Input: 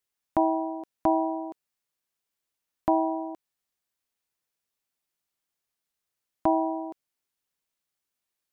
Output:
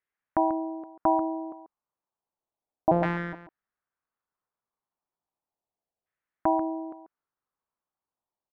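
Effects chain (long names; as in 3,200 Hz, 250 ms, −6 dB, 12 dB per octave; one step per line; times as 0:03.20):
0:02.91–0:03.33: samples sorted by size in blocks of 256 samples
auto-filter low-pass saw down 0.33 Hz 680–1,900 Hz
slap from a distant wall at 24 metres, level −11 dB
level −2.5 dB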